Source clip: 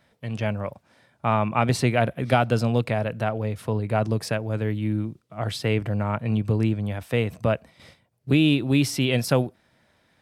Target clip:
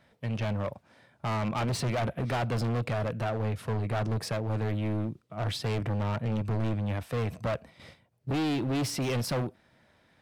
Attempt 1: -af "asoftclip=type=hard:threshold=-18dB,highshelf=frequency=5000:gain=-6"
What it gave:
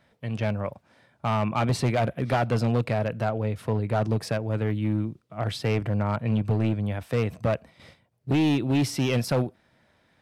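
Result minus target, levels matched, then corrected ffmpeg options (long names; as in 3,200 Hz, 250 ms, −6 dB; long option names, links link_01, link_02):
hard clipping: distortion −6 dB
-af "asoftclip=type=hard:threshold=-26.5dB,highshelf=frequency=5000:gain=-6"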